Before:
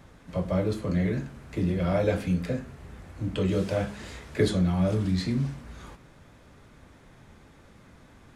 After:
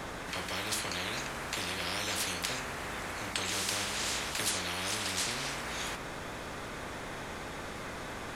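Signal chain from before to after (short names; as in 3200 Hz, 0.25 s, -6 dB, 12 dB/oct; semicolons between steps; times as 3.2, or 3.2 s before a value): spectral compressor 10:1; gain -1.5 dB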